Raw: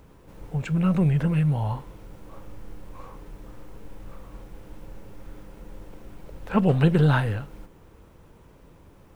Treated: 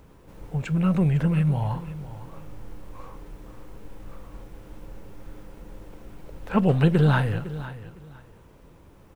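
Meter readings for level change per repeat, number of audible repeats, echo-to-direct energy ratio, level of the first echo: -13.0 dB, 2, -15.0 dB, -15.0 dB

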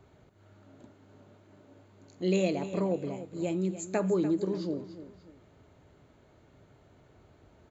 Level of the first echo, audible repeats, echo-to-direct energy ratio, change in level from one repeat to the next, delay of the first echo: -13.0 dB, 2, -12.5 dB, -9.0 dB, 294 ms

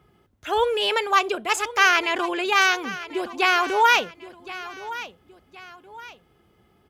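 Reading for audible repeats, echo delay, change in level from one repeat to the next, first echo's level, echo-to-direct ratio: 2, 1069 ms, -8.5 dB, -15.5 dB, -15.0 dB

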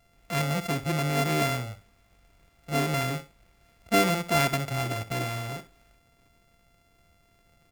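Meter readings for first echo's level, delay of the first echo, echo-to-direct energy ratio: -14.0 dB, 63 ms, -14.0 dB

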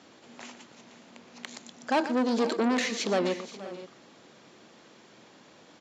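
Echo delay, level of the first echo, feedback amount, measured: 120 ms, -13.0 dB, no regular repeats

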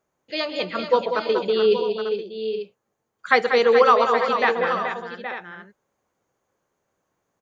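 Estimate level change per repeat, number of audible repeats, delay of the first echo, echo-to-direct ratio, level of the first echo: no regular repeats, 6, 129 ms, -3.5 dB, -19.0 dB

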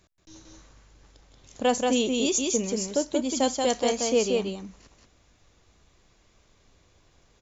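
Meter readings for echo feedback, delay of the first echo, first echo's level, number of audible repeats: no regular repeats, 181 ms, -3.0 dB, 1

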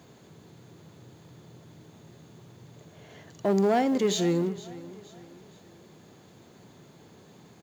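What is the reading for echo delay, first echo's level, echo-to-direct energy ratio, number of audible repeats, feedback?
468 ms, -18.0 dB, -17.0 dB, 3, 42%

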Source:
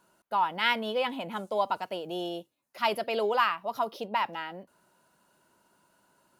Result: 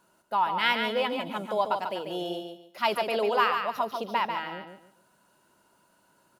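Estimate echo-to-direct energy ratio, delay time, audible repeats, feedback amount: -5.5 dB, 143 ms, 3, 26%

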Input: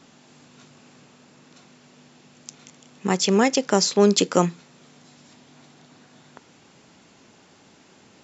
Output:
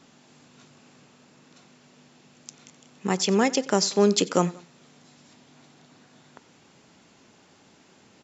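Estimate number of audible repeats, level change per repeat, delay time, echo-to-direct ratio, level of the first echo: 2, -5.5 dB, 91 ms, -20.0 dB, -21.0 dB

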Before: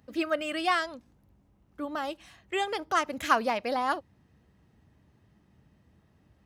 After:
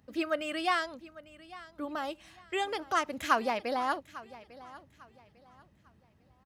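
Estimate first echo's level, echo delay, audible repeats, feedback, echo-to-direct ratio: -18.5 dB, 849 ms, 2, 30%, -18.0 dB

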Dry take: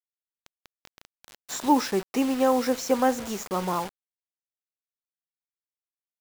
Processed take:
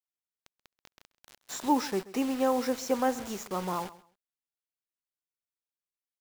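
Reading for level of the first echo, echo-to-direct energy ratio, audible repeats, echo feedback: -18.5 dB, -18.5 dB, 2, 21%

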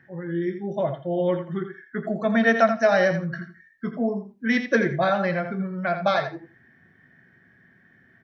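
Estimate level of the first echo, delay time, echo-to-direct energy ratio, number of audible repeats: -9.0 dB, 83 ms, -9.0 dB, 2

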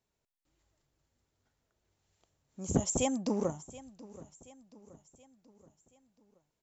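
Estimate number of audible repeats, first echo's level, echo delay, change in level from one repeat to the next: 3, -19.0 dB, 727 ms, -6.0 dB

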